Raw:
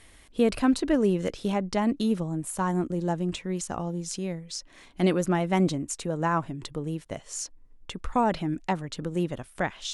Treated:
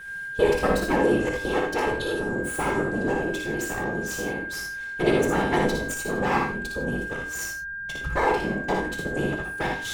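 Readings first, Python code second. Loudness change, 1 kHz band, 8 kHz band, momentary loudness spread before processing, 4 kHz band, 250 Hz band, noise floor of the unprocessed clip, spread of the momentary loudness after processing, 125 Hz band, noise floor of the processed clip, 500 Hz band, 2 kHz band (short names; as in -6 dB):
+2.5 dB, +3.0 dB, +0.5 dB, 12 LU, +2.0 dB, -1.5 dB, -54 dBFS, 8 LU, -2.0 dB, -34 dBFS, +4.5 dB, +13.0 dB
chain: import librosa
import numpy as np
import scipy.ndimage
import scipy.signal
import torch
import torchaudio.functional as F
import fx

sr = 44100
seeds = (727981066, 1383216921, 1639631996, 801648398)

p1 = fx.lower_of_two(x, sr, delay_ms=2.3)
p2 = fx.whisperise(p1, sr, seeds[0])
p3 = p2 + 10.0 ** (-38.0 / 20.0) * np.sin(2.0 * np.pi * 1600.0 * np.arange(len(p2)) / sr)
p4 = p3 + fx.room_early_taps(p3, sr, ms=(58, 78), db=(-5.0, -8.0), dry=0)
y = fx.rev_gated(p4, sr, seeds[1], gate_ms=120, shape='flat', drr_db=4.5)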